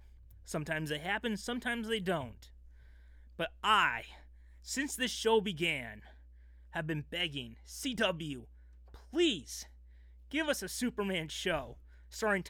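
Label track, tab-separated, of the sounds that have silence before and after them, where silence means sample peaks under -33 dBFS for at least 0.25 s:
0.510000	2.240000	sound
3.400000	4.000000	sound
4.700000	5.860000	sound
6.760000	7.420000	sound
7.810000	8.330000	sound
9.160000	9.560000	sound
10.340000	11.610000	sound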